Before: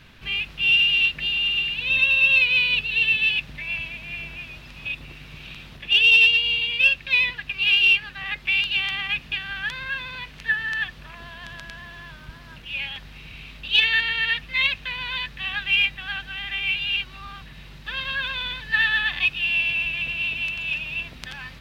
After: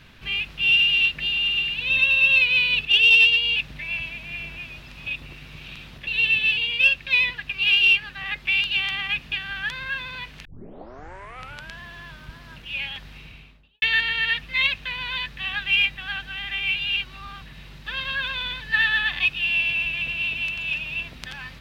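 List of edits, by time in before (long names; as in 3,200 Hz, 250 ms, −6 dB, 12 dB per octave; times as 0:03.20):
0:02.85–0:03.35: swap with 0:05.86–0:06.57
0:10.45: tape start 1.28 s
0:13.11–0:13.82: fade out and dull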